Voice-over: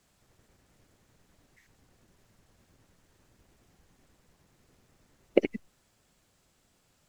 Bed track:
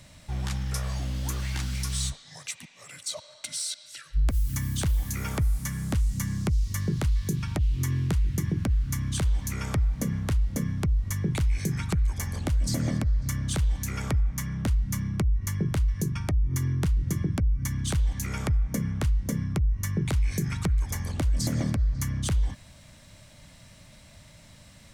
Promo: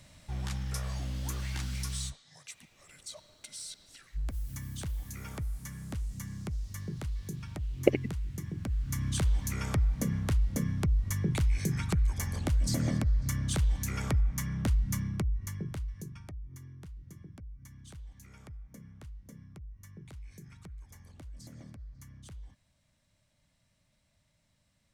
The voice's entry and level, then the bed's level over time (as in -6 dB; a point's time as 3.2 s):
2.50 s, -0.5 dB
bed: 1.86 s -5 dB
2.26 s -11 dB
8.51 s -11 dB
9.06 s -2.5 dB
14.92 s -2.5 dB
16.7 s -22 dB